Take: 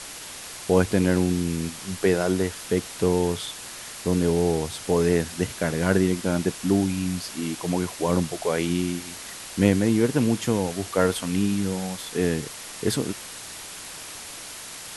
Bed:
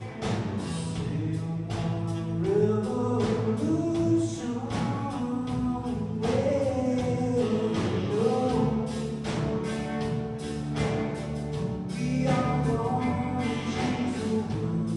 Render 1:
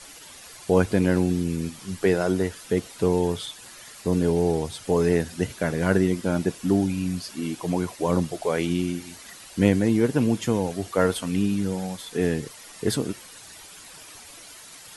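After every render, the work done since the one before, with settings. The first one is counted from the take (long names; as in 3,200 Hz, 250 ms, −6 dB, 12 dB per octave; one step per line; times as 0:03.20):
broadband denoise 10 dB, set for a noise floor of −39 dBFS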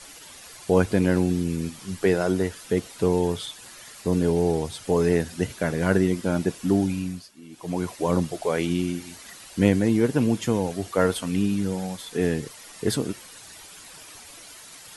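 0:06.93–0:07.87: duck −16 dB, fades 0.38 s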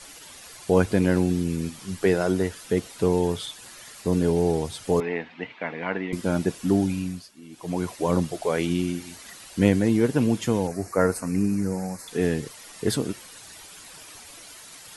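0:05.00–0:06.13: loudspeaker in its box 360–3,000 Hz, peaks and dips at 380 Hz −9 dB, 570 Hz −7 dB, 900 Hz +3 dB, 1,500 Hz −6 dB, 2,200 Hz +6 dB
0:10.67–0:12.08: Butterworth band-reject 3,300 Hz, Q 1.3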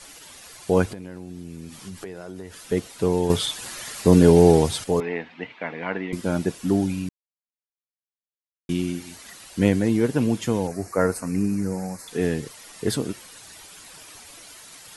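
0:00.91–0:02.72: downward compressor 10 to 1, threshold −32 dBFS
0:03.30–0:04.84: clip gain +8.5 dB
0:07.09–0:08.69: silence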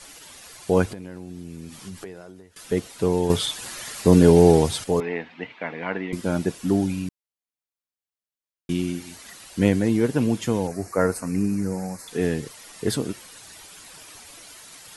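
0:01.96–0:02.56: fade out linear, to −19.5 dB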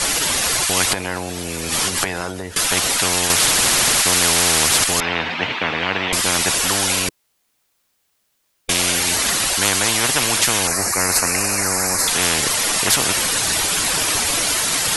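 every bin compressed towards the loudest bin 10 to 1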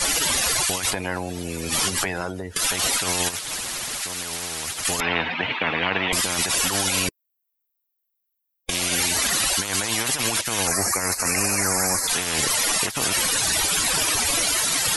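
spectral dynamics exaggerated over time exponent 1.5
compressor whose output falls as the input rises −23 dBFS, ratio −0.5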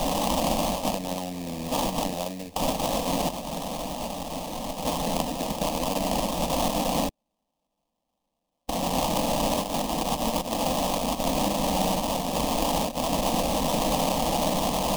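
sample-rate reduction 2,100 Hz, jitter 20%
phaser with its sweep stopped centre 390 Hz, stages 6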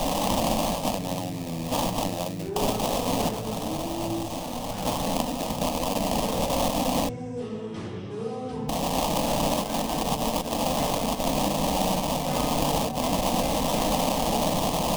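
mix in bed −7.5 dB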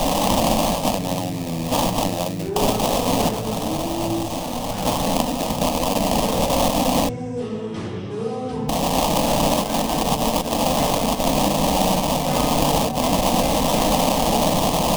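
level +6 dB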